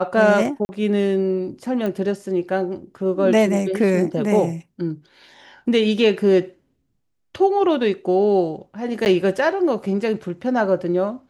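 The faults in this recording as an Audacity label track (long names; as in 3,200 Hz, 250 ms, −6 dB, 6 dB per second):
0.650000	0.690000	drop-out 40 ms
1.860000	1.860000	click −15 dBFS
9.050000	9.060000	drop-out 9.8 ms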